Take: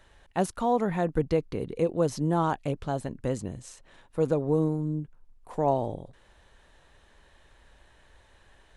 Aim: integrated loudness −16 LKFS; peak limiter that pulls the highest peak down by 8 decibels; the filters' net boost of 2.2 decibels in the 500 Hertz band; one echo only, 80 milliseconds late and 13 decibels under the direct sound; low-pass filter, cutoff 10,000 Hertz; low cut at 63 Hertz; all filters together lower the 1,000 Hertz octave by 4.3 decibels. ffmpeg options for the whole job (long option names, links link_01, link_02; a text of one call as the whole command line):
ffmpeg -i in.wav -af "highpass=63,lowpass=10000,equalizer=frequency=500:width_type=o:gain=4.5,equalizer=frequency=1000:width_type=o:gain=-9,alimiter=limit=-20dB:level=0:latency=1,aecho=1:1:80:0.224,volume=15dB" out.wav